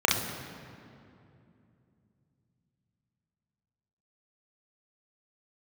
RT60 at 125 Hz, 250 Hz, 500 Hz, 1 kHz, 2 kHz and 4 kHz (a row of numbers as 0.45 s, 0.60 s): 4.5 s, 3.9 s, 2.9 s, 2.5 s, 2.1 s, 1.6 s